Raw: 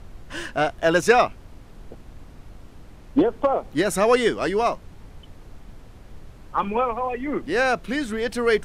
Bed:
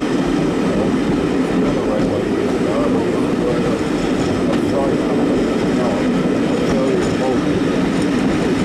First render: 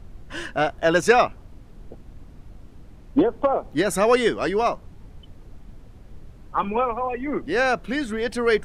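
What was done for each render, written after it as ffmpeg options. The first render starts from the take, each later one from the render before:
-af "afftdn=nr=6:nf=-46"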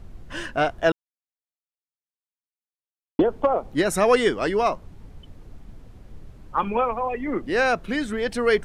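-filter_complex "[0:a]asplit=3[a][b][c];[a]atrim=end=0.92,asetpts=PTS-STARTPTS,afade=t=out:st=0.916:d=0.004:c=hsin[d];[b]atrim=start=0.92:end=3.19,asetpts=PTS-STARTPTS,volume=0[e];[c]atrim=start=3.19,asetpts=PTS-STARTPTS,afade=t=in:d=0.004:c=hsin[f];[d][e][f]concat=n=3:v=0:a=1"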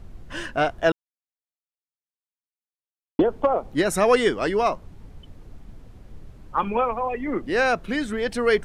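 -af anull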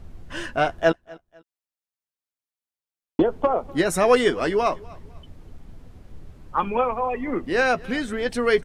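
-filter_complex "[0:a]asplit=2[a][b];[b]adelay=12,volume=-11dB[c];[a][c]amix=inputs=2:normalize=0,aecho=1:1:249|498:0.0708|0.0234"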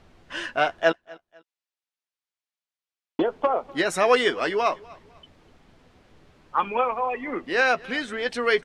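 -af "lowpass=3.3k,aemphasis=mode=production:type=riaa"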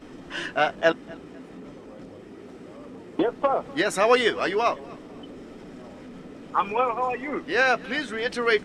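-filter_complex "[1:a]volume=-26dB[a];[0:a][a]amix=inputs=2:normalize=0"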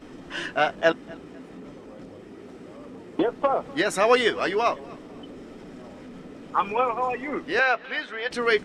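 -filter_complex "[0:a]asettb=1/sr,asplit=3[a][b][c];[a]atrim=end=7.594[d];[b]atrim=start=7.59:end=8.31,asetpts=PTS-STARTPTS,afade=t=in:d=0.004:c=qsin,afade=t=out:st=0.716:d=0.004:c=qsin,acrossover=split=460 4500:gain=0.2 1 0.112[e][f][g];[e][f][g]amix=inputs=3:normalize=0[h];[c]atrim=start=8.306[i];[d][h]acrossfade=d=0.004:c1=hsin:c2=qsin[j];[j][i]acrossfade=d=0.004:c1=qsin:c2=hsin"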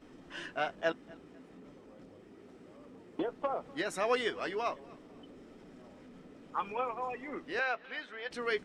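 -af "volume=-11.5dB"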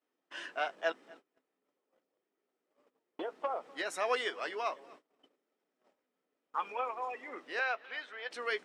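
-af "highpass=490,agate=range=-25dB:threshold=-55dB:ratio=16:detection=peak"

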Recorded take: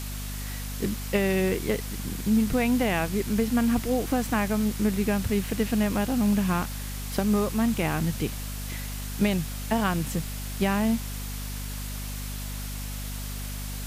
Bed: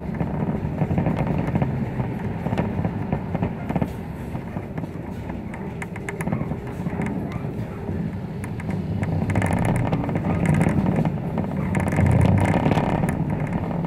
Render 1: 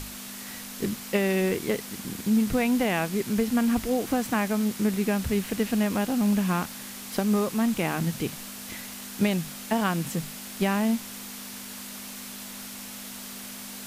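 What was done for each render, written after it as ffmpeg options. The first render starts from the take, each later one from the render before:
-af "bandreject=f=50:t=h:w=6,bandreject=f=100:t=h:w=6,bandreject=f=150:t=h:w=6"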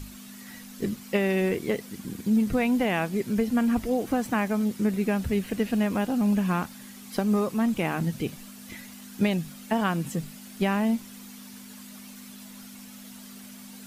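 -af "afftdn=nr=10:nf=-40"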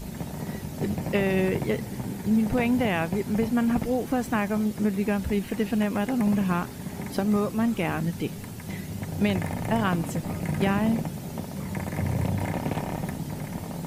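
-filter_complex "[1:a]volume=-9.5dB[a];[0:a][a]amix=inputs=2:normalize=0"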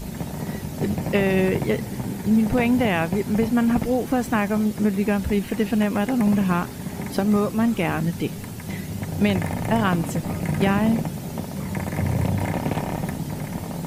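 -af "volume=4dB"

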